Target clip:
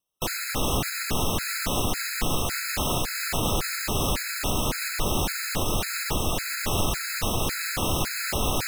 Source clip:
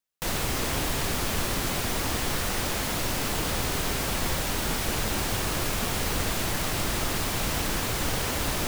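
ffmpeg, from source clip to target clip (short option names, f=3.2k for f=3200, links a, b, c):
-filter_complex "[0:a]asplit=2[a][b];[b]asetrate=33038,aresample=44100,atempo=1.33484,volume=-2dB[c];[a][c]amix=inputs=2:normalize=0,alimiter=limit=-16dB:level=0:latency=1:release=134,acontrast=62,afftfilt=real='re*gt(sin(2*PI*1.8*pts/sr)*(1-2*mod(floor(b*sr/1024/1300),2)),0)':imag='im*gt(sin(2*PI*1.8*pts/sr)*(1-2*mod(floor(b*sr/1024/1300),2)),0)':win_size=1024:overlap=0.75,volume=-3dB"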